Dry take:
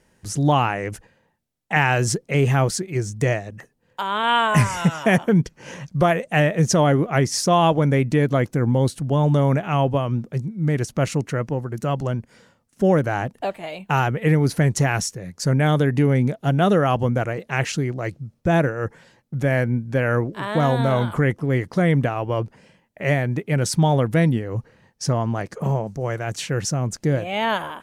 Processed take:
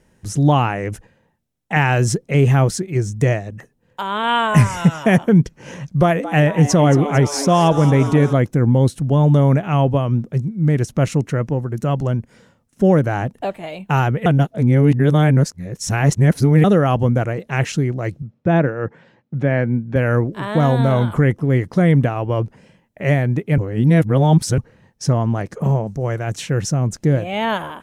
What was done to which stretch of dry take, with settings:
0:05.93–0:08.33: echo with shifted repeats 225 ms, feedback 64%, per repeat +140 Hz, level −13 dB
0:14.26–0:16.64: reverse
0:18.22–0:19.96: band-pass filter 130–3,200 Hz
0:23.58–0:24.58: reverse
whole clip: low-shelf EQ 420 Hz +6 dB; notch filter 4,600 Hz, Q 17

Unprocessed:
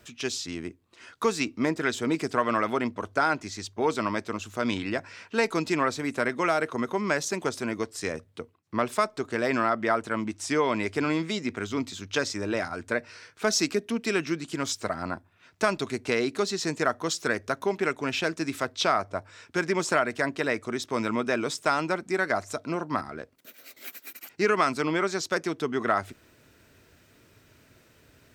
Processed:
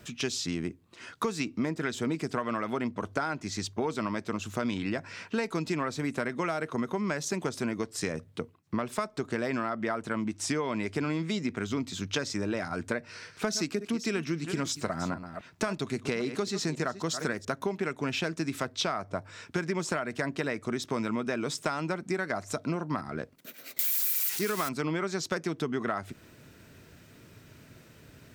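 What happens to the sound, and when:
0:12.99–0:17.45: delay that plays each chunk backwards 269 ms, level −13 dB
0:23.79–0:24.69: spike at every zero crossing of −16 dBFS
whole clip: parametric band 160 Hz +7.5 dB 1.2 octaves; downward compressor 6 to 1, threshold −30 dBFS; level +2.5 dB

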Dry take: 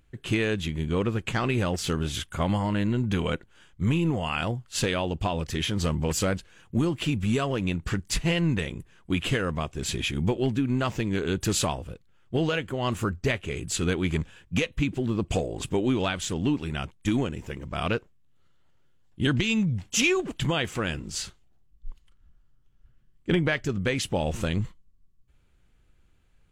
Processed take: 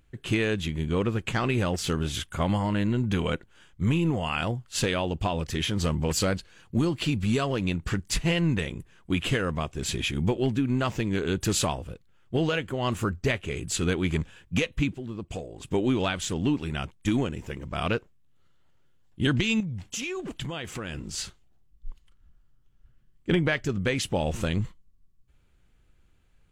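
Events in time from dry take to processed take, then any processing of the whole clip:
0:06.16–0:07.73: parametric band 4,400 Hz +7.5 dB 0.27 octaves
0:14.93–0:15.71: clip gain −9 dB
0:19.60–0:21.18: downward compressor, threshold −30 dBFS

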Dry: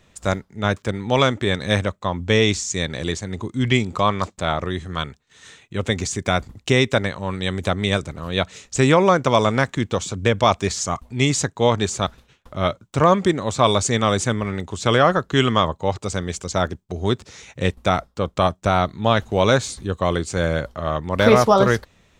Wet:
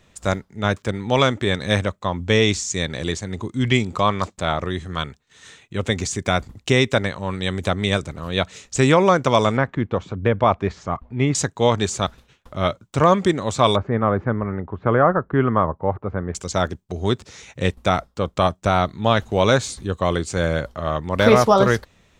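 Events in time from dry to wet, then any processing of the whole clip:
0:09.57–0:11.35: low-pass filter 1,800 Hz
0:13.76–0:16.35: low-pass filter 1,600 Hz 24 dB per octave

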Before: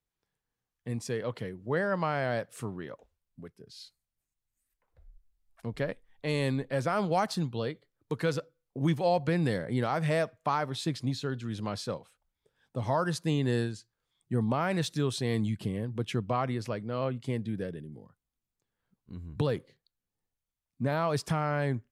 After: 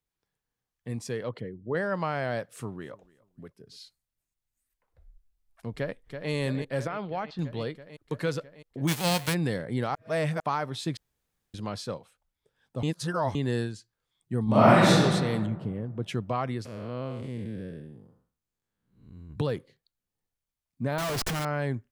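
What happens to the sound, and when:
0:01.29–0:01.75: spectral envelope exaggerated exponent 1.5
0:02.43–0:03.78: repeating echo 289 ms, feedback 28%, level −23.5 dB
0:05.73–0:06.31: delay throw 330 ms, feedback 80%, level −7.5 dB
0:06.87–0:07.39: transistor ladder low-pass 4,000 Hz, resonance 25%
0:08.87–0:09.33: spectral envelope flattened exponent 0.3
0:09.95–0:10.40: reverse
0:10.97–0:11.54: fill with room tone
0:12.83–0:13.35: reverse
0:14.44–0:14.96: thrown reverb, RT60 1.7 s, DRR −12 dB
0:15.46–0:16.03: low-pass filter 1,000 Hz 6 dB per octave
0:16.65–0:19.30: spectrum smeared in time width 240 ms
0:20.98–0:21.45: comparator with hysteresis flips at −46 dBFS

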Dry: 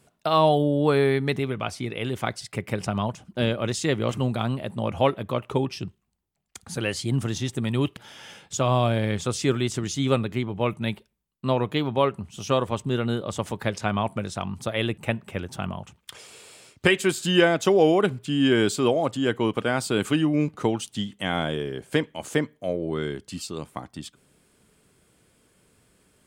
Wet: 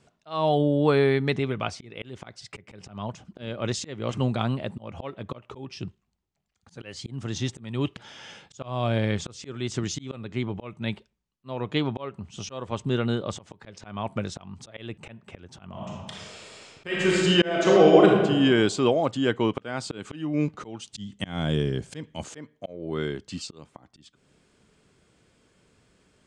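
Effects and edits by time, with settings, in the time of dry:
0:15.69–0:18.24: thrown reverb, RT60 1.4 s, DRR −1.5 dB
0:20.93–0:22.24: bass and treble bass +11 dB, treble +9 dB
whole clip: volume swells 345 ms; low-pass filter 7,300 Hz 24 dB per octave

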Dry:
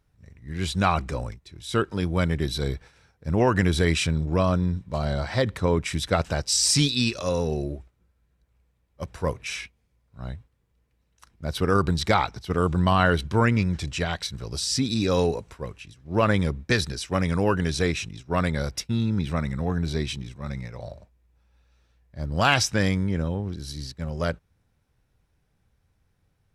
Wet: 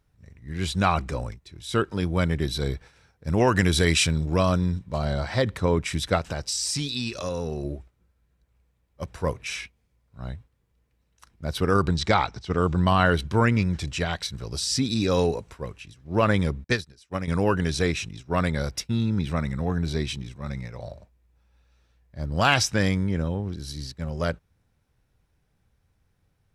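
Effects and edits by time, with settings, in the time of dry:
0:03.27–0:04.79: high-shelf EQ 2,800 Hz +7.5 dB
0:06.18–0:07.65: downward compressor 4 to 1, threshold −25 dBFS
0:11.88–0:12.86: low-pass filter 8,000 Hz 24 dB per octave
0:16.64–0:17.28: expander for the loud parts 2.5 to 1, over −35 dBFS

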